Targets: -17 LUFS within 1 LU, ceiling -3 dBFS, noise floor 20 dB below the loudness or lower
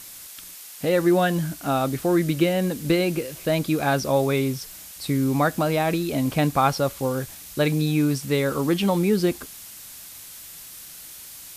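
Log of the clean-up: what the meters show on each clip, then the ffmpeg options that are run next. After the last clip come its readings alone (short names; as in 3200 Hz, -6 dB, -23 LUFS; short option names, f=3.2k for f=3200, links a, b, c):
noise floor -42 dBFS; noise floor target -43 dBFS; loudness -23.0 LUFS; peak -7.0 dBFS; loudness target -17.0 LUFS
-> -af "afftdn=nr=6:nf=-42"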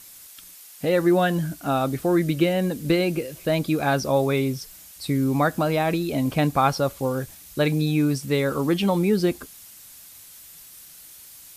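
noise floor -46 dBFS; loudness -23.0 LUFS; peak -7.0 dBFS; loudness target -17.0 LUFS
-> -af "volume=6dB,alimiter=limit=-3dB:level=0:latency=1"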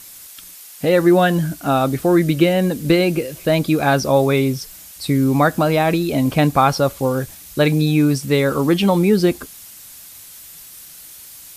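loudness -17.0 LUFS; peak -3.0 dBFS; noise floor -40 dBFS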